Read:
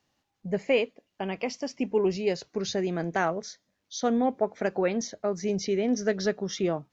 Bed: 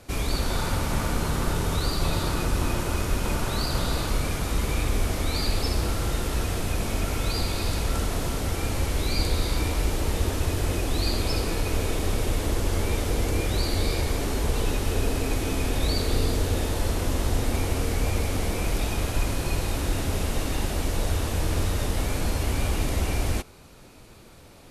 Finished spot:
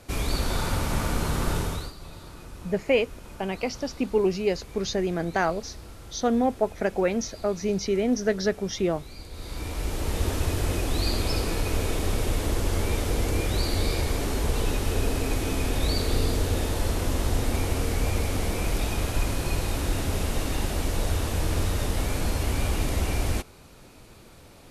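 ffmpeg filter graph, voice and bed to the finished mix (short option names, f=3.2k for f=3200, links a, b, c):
-filter_complex "[0:a]adelay=2200,volume=2dB[a];[1:a]volume=16.5dB,afade=t=out:st=1.57:d=0.36:silence=0.141254,afade=t=in:st=9.3:d=1:silence=0.141254[b];[a][b]amix=inputs=2:normalize=0"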